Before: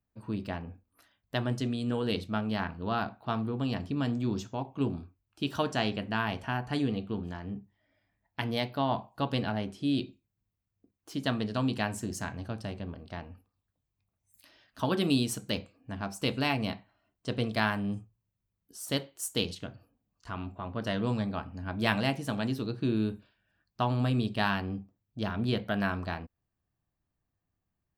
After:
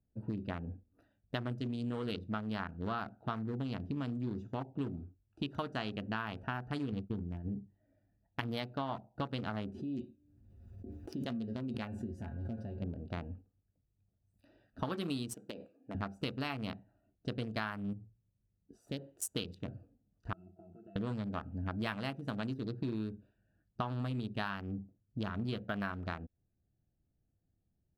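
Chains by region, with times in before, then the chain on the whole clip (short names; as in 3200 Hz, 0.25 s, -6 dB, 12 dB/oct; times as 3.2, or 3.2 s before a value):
6.92–7.48 expander -35 dBFS + low shelf 180 Hz +8.5 dB
9.74–12.82 resonator 77 Hz, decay 0.16 s, harmonics odd, mix 90% + de-hum 146.8 Hz, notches 11 + backwards sustainer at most 36 dB/s
15.34–15.95 HPF 340 Hz + compressor 20:1, threshold -37 dBFS
17.93–19.18 high shelf 9300 Hz -5 dB + compressor 1.5:1, threshold -50 dBFS
20.33–20.96 HPF 270 Hz + compressor 8:1, threshold -39 dBFS + octave resonator E, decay 0.12 s
whole clip: Wiener smoothing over 41 samples; dynamic EQ 1300 Hz, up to +7 dB, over -51 dBFS, Q 2.4; compressor 6:1, threshold -40 dBFS; gain +5 dB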